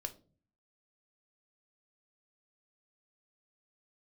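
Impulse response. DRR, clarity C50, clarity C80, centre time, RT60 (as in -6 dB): 7.5 dB, 16.0 dB, 22.0 dB, 6 ms, 0.40 s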